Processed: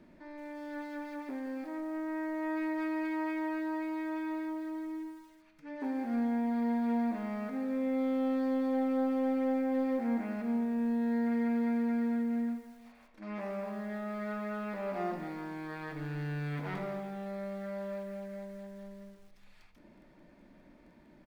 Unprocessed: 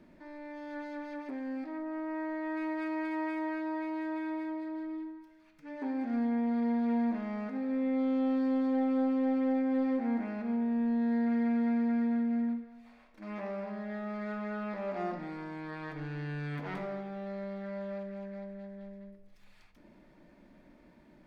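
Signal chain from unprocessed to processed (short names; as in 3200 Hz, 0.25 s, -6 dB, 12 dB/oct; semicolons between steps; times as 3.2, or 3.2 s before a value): feedback echo 82 ms, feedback 44%, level -19.5 dB; lo-fi delay 0.169 s, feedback 35%, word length 9-bit, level -12 dB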